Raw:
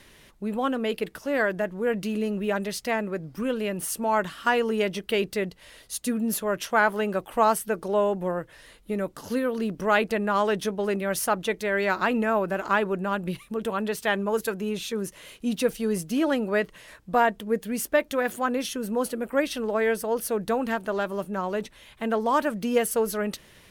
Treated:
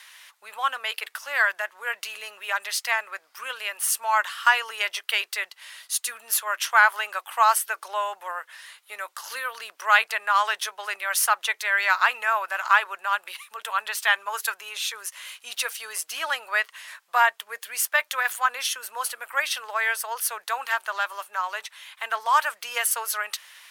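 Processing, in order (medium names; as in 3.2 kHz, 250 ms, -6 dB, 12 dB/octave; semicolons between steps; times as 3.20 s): high-pass 980 Hz 24 dB/octave; trim +7 dB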